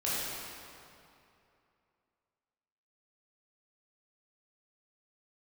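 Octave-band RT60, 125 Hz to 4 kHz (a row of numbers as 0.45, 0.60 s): 2.8, 2.7, 2.7, 2.7, 2.3, 1.9 s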